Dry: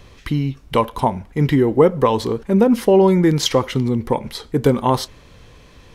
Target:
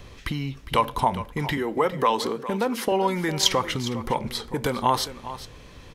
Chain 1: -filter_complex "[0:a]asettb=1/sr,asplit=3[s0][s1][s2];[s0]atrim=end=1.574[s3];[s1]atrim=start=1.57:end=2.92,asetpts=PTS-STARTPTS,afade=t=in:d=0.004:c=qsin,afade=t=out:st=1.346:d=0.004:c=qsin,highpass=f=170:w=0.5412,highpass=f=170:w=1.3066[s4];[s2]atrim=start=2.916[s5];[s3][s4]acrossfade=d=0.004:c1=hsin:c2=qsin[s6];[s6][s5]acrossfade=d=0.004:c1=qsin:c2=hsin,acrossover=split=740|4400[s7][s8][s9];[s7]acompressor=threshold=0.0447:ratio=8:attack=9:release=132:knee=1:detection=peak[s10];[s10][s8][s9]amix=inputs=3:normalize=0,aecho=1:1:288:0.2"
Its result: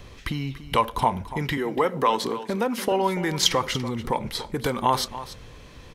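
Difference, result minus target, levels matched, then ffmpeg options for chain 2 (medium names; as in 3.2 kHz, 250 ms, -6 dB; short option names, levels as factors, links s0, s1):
echo 119 ms early
-filter_complex "[0:a]asettb=1/sr,asplit=3[s0][s1][s2];[s0]atrim=end=1.574[s3];[s1]atrim=start=1.57:end=2.92,asetpts=PTS-STARTPTS,afade=t=in:d=0.004:c=qsin,afade=t=out:st=1.346:d=0.004:c=qsin,highpass=f=170:w=0.5412,highpass=f=170:w=1.3066[s4];[s2]atrim=start=2.916[s5];[s3][s4]acrossfade=d=0.004:c1=hsin:c2=qsin[s6];[s6][s5]acrossfade=d=0.004:c1=qsin:c2=hsin,acrossover=split=740|4400[s7][s8][s9];[s7]acompressor=threshold=0.0447:ratio=8:attack=9:release=132:knee=1:detection=peak[s10];[s10][s8][s9]amix=inputs=3:normalize=0,aecho=1:1:407:0.2"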